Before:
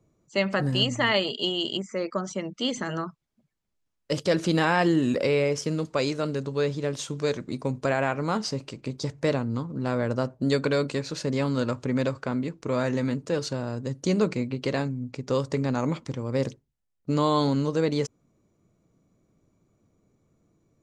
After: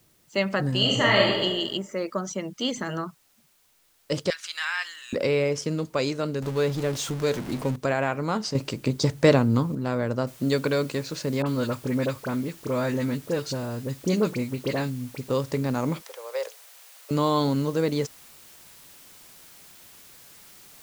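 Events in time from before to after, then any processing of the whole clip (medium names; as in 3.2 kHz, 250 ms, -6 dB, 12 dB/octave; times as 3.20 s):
0.77–1.42 s: reverb throw, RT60 1.1 s, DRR -2 dB
2.22–2.73 s: peaking EQ 6.2 kHz +6 dB 0.27 oct
4.30–5.13 s: high-pass 1.4 kHz 24 dB/octave
6.42–7.76 s: jump at every zero crossing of -32 dBFS
8.55–9.75 s: gain +7.5 dB
10.27 s: noise floor step -64 dB -50 dB
11.42–15.30 s: phase dispersion highs, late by 42 ms, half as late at 1.8 kHz
16.02–17.11 s: steep high-pass 470 Hz 48 dB/octave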